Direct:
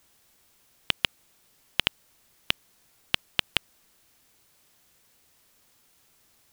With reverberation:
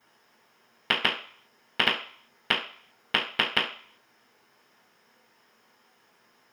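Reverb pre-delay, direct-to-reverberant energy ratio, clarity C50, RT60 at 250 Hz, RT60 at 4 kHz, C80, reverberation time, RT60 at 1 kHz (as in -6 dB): 3 ms, -12.0 dB, 8.0 dB, 0.35 s, 0.50 s, 12.0 dB, 0.50 s, 0.55 s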